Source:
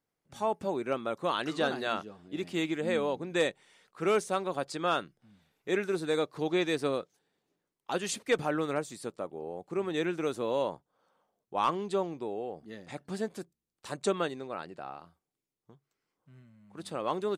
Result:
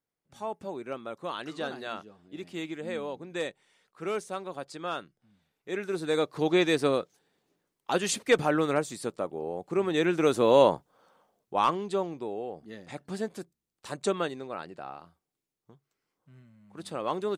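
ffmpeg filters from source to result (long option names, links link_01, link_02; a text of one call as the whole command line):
ffmpeg -i in.wav -af "volume=11.5dB,afade=type=in:start_time=5.7:duration=0.75:silence=0.316228,afade=type=in:start_time=10.02:duration=0.65:silence=0.473151,afade=type=out:start_time=10.67:duration=1.13:silence=0.298538" out.wav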